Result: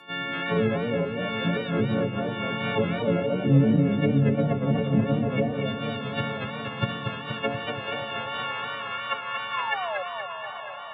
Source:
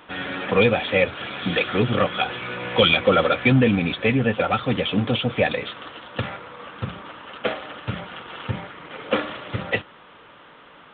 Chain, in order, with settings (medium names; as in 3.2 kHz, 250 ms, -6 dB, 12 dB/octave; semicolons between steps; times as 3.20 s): partials quantised in pitch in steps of 4 st; low-pass that closes with the level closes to 480 Hz, closed at -14.5 dBFS; 6.55–7.40 s: transient shaper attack +9 dB, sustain +5 dB; high-pass sweep 140 Hz -> 1.1 kHz, 7.12–8.47 s; 9.54–10.03 s: painted sound fall 540–1100 Hz -26 dBFS; on a send: echo that smears into a reverb 784 ms, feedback 50%, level -13 dB; on the sum: modulated delay 238 ms, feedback 67%, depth 125 cents, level -6 dB; trim -6 dB